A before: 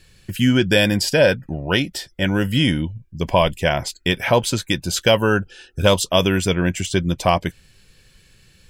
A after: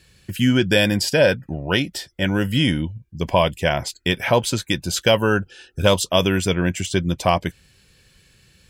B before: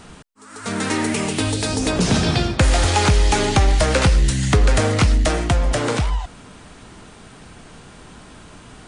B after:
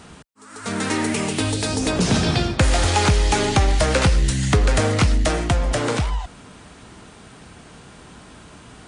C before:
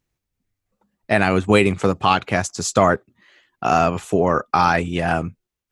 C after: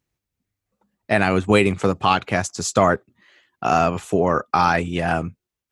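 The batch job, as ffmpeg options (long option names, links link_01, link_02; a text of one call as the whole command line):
ffmpeg -i in.wav -af "highpass=41,volume=-1dB" out.wav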